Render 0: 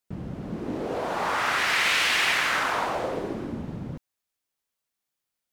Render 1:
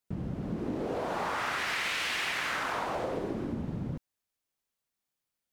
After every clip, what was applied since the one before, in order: bass shelf 420 Hz +4 dB; compression, threshold -26 dBFS, peak gain reduction 7 dB; trim -3 dB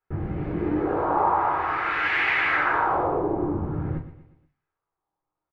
feedback delay 120 ms, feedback 46%, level -13.5 dB; LFO low-pass sine 0.53 Hz 950–2100 Hz; reverberation RT60 0.25 s, pre-delay 5 ms, DRR 1 dB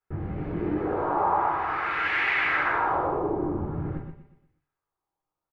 delay 125 ms -7.5 dB; trim -3 dB

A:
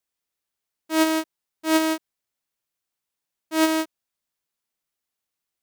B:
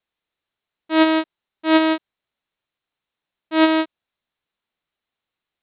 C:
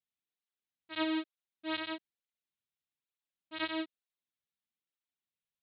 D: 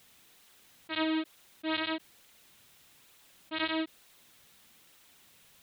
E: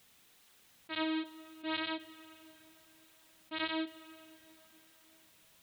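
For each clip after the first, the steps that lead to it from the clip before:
steep low-pass 4.1 kHz 96 dB/octave; trim +5 dB
peaking EQ 800 Hz -10.5 dB 2.9 oct; cancelling through-zero flanger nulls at 1.1 Hz, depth 3.5 ms; trim -7 dB
level flattener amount 50%; trim +1.5 dB
plate-style reverb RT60 3.8 s, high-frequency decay 0.9×, DRR 14 dB; trim -4 dB

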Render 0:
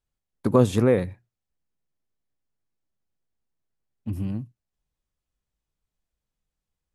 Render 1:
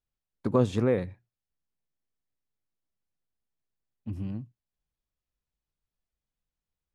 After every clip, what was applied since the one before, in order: low-pass 6.3 kHz 12 dB/octave; trim -5.5 dB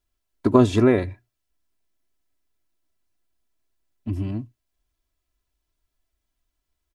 comb 3 ms, depth 72%; trim +8 dB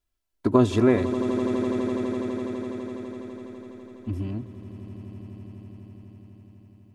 echo with a slow build-up 83 ms, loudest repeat 8, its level -15 dB; trim -3 dB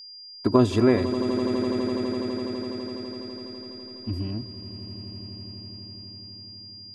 whistle 4.8 kHz -41 dBFS

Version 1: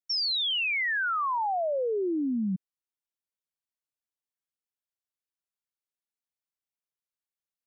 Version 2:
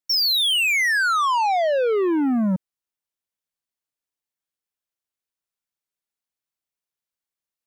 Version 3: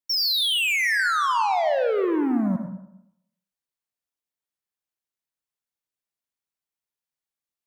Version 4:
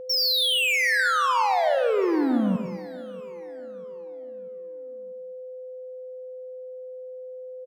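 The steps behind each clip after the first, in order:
waveshaping leveller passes 2; trim +7 dB
reverberation RT60 0.80 s, pre-delay 68 ms, DRR 5 dB; trim -3.5 dB
whistle 510 Hz -35 dBFS; feedback delay 640 ms, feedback 52%, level -21 dB

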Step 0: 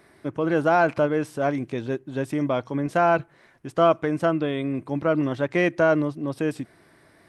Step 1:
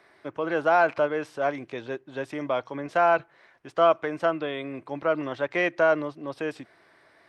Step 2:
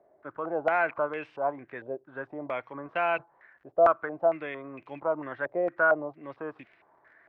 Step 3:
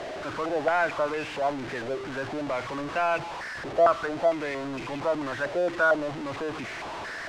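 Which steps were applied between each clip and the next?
three-band isolator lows -13 dB, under 430 Hz, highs -14 dB, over 5.8 kHz
crackle 38 per s -40 dBFS; step-sequenced low-pass 4.4 Hz 620–2600 Hz; trim -8 dB
jump at every zero crossing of -29.5 dBFS; distance through air 97 m

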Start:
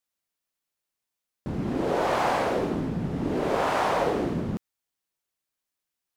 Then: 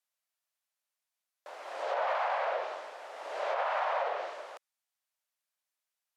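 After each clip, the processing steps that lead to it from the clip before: elliptic high-pass 580 Hz, stop band 70 dB; low-pass that closes with the level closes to 3 kHz, closed at -25.5 dBFS; peak limiter -21 dBFS, peak gain reduction 6 dB; trim -1.5 dB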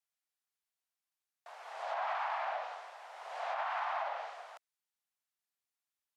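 frequency shift +110 Hz; trim -5 dB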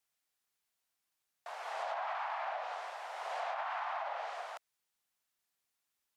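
compression, threshold -42 dBFS, peak gain reduction 9.5 dB; trim +6.5 dB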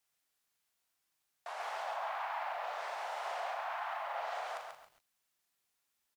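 peak limiter -35 dBFS, peak gain reduction 8 dB; doubling 40 ms -6.5 dB; bit-crushed delay 137 ms, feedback 35%, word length 11-bit, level -4.5 dB; trim +2 dB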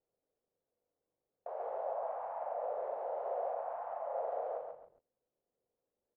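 resonant low-pass 500 Hz, resonance Q 4.9; trim +2.5 dB

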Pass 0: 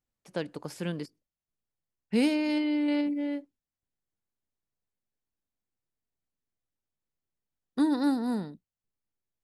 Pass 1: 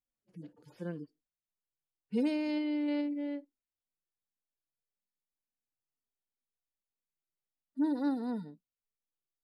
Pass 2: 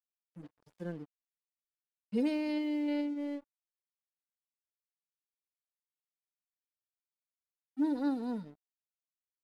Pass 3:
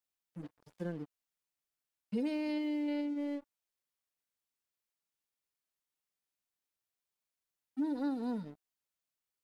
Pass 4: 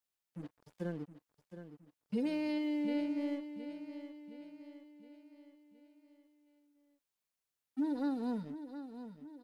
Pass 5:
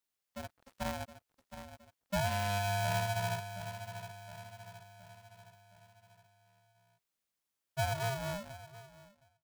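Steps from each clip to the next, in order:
harmonic-percussive separation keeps harmonic; peaking EQ 460 Hz +4 dB 1.5 oct; trim -7.5 dB
crossover distortion -56 dBFS
compression 2.5:1, threshold -39 dBFS, peak gain reduction 8.5 dB; trim +4 dB
feedback delay 717 ms, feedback 49%, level -11 dB
fade out at the end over 1.74 s; polarity switched at an audio rate 400 Hz; trim +1.5 dB

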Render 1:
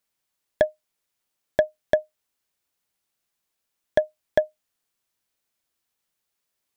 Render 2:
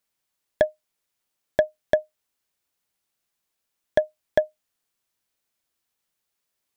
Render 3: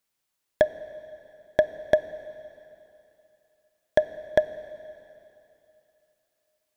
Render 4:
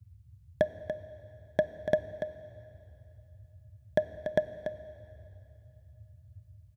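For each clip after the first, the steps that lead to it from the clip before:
no audible change
reverberation RT60 3.0 s, pre-delay 18 ms, DRR 13 dB
on a send: delay 288 ms -9.5 dB; on the sum: band noise 62–110 Hz -50 dBFS; peaking EQ 170 Hz +12.5 dB 1.2 oct; trim -7.5 dB

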